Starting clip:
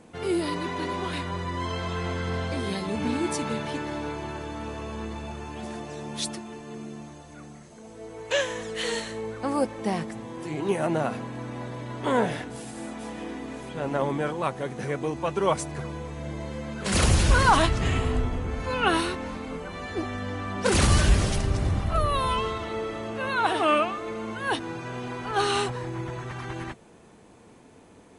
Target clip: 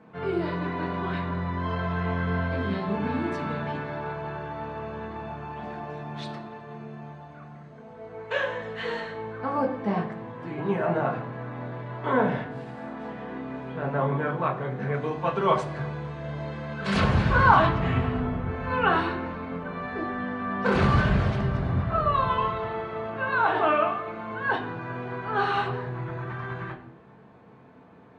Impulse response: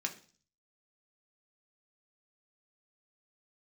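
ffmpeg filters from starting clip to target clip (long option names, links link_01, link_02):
-filter_complex "[0:a]asetnsamples=nb_out_samples=441:pad=0,asendcmd='14.94 lowpass f 3300;17 lowpass f 2000',lowpass=2000[link_01];[1:a]atrim=start_sample=2205,asetrate=28665,aresample=44100[link_02];[link_01][link_02]afir=irnorm=-1:irlink=0,volume=-2.5dB"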